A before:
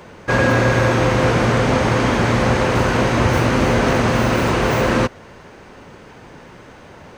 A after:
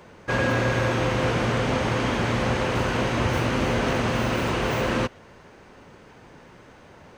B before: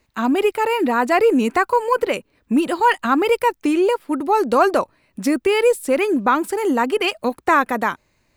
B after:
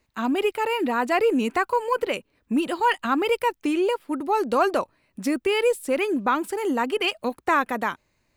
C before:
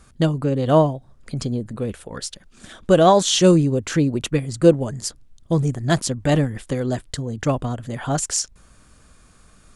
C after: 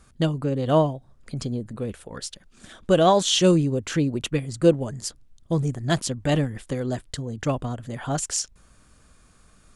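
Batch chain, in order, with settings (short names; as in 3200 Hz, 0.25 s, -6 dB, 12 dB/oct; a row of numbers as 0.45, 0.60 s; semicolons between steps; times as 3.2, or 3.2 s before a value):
dynamic EQ 3000 Hz, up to +4 dB, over -39 dBFS, Q 2.2; match loudness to -24 LUFS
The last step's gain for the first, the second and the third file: -7.5, -5.5, -4.0 dB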